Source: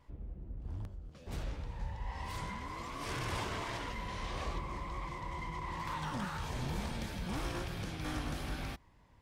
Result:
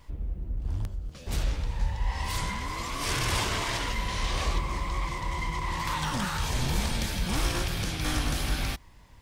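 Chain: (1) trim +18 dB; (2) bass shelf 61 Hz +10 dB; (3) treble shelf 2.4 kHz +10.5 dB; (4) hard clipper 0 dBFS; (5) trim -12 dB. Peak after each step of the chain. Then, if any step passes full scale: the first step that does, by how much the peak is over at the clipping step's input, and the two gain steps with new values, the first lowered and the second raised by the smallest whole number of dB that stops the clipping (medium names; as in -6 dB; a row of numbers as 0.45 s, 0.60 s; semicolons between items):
-6.5 dBFS, -4.5 dBFS, -3.0 dBFS, -3.0 dBFS, -15.0 dBFS; nothing clips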